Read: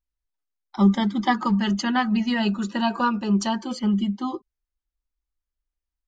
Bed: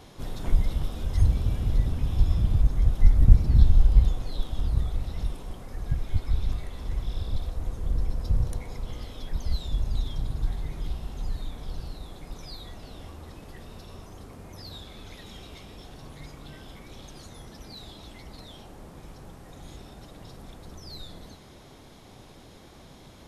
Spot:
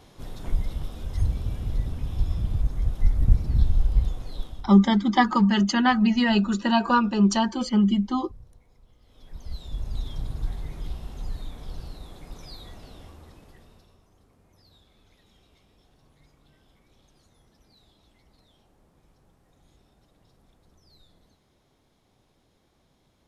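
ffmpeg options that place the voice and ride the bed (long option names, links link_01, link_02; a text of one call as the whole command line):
ffmpeg -i stem1.wav -i stem2.wav -filter_complex "[0:a]adelay=3900,volume=2dB[link_01];[1:a]volume=18dB,afade=type=out:start_time=4.42:duration=0.29:silence=0.105925,afade=type=in:start_time=9.02:duration=1.13:silence=0.0841395,afade=type=out:start_time=12.73:duration=1.25:silence=0.16788[link_02];[link_01][link_02]amix=inputs=2:normalize=0" out.wav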